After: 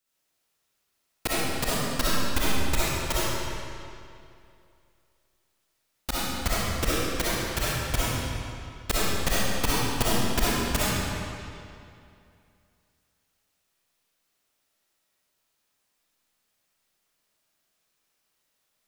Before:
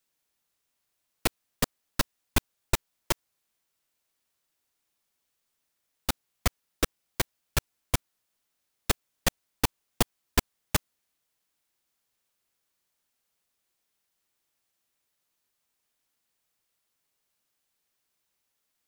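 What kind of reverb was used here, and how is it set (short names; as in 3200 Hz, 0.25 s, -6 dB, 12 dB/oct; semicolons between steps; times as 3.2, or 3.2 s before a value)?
digital reverb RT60 2.5 s, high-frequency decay 0.85×, pre-delay 20 ms, DRR -9.5 dB; gain -4 dB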